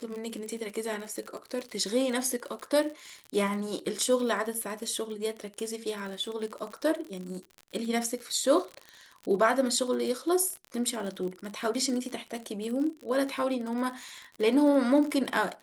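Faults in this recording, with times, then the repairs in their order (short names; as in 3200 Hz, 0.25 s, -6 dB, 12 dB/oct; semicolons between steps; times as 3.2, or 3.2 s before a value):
crackle 50/s -34 dBFS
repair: de-click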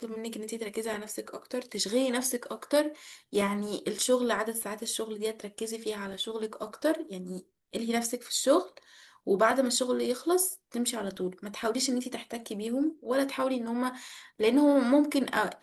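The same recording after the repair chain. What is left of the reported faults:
none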